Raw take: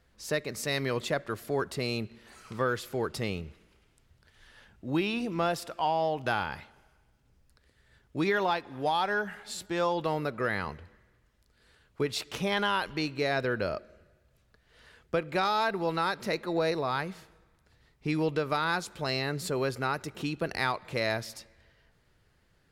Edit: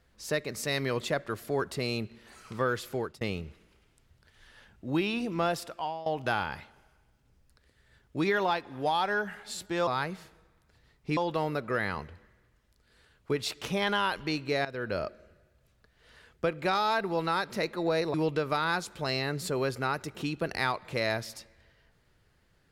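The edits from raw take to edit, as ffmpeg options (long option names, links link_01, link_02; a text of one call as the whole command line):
ffmpeg -i in.wav -filter_complex "[0:a]asplit=7[link_01][link_02][link_03][link_04][link_05][link_06][link_07];[link_01]atrim=end=3.21,asetpts=PTS-STARTPTS,afade=type=out:start_time=2.96:duration=0.25[link_08];[link_02]atrim=start=3.21:end=6.06,asetpts=PTS-STARTPTS,afade=type=in:duration=0.004:curve=hsin,afade=type=out:start_time=2.39:duration=0.46:silence=0.141254[link_09];[link_03]atrim=start=6.06:end=9.872,asetpts=PTS-STARTPTS,afade=type=in:duration=0.004:curve=hsin:silence=0.141254[link_10];[link_04]atrim=start=16.838:end=18.142[link_11];[link_05]atrim=start=9.868:end=13.35,asetpts=PTS-STARTPTS,afade=type=out:start_time=3.478:duration=0.004:curve=hsin:silence=0.16788[link_12];[link_06]atrim=start=13.35:end=16.842,asetpts=PTS-STARTPTS,afade=type=in:duration=0.34:silence=0.16788[link_13];[link_07]atrim=start=18.138[link_14];[link_08][link_09][link_10]concat=n=3:v=0:a=1[link_15];[link_15][link_11]acrossfade=duration=0.004:curve1=hsin:curve2=hsin[link_16];[link_12][link_13]concat=n=2:v=0:a=1[link_17];[link_16][link_17]acrossfade=duration=0.004:curve1=hsin:curve2=hsin[link_18];[link_18][link_14]acrossfade=duration=0.004:curve1=hsin:curve2=hsin" out.wav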